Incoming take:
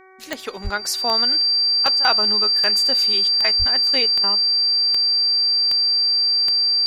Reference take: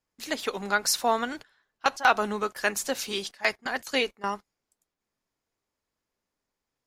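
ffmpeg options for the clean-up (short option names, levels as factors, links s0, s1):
-filter_complex "[0:a]adeclick=t=4,bandreject=f=377.4:t=h:w=4,bandreject=f=754.8:t=h:w=4,bandreject=f=1132.2:t=h:w=4,bandreject=f=1509.6:t=h:w=4,bandreject=f=1887:t=h:w=4,bandreject=f=2264.4:t=h:w=4,bandreject=f=4700:w=30,asplit=3[s0][s1][s2];[s0]afade=t=out:st=0.63:d=0.02[s3];[s1]highpass=f=140:w=0.5412,highpass=f=140:w=1.3066,afade=t=in:st=0.63:d=0.02,afade=t=out:st=0.75:d=0.02[s4];[s2]afade=t=in:st=0.75:d=0.02[s5];[s3][s4][s5]amix=inputs=3:normalize=0,asplit=3[s6][s7][s8];[s6]afade=t=out:st=3.58:d=0.02[s9];[s7]highpass=f=140:w=0.5412,highpass=f=140:w=1.3066,afade=t=in:st=3.58:d=0.02,afade=t=out:st=3.7:d=0.02[s10];[s8]afade=t=in:st=3.7:d=0.02[s11];[s9][s10][s11]amix=inputs=3:normalize=0"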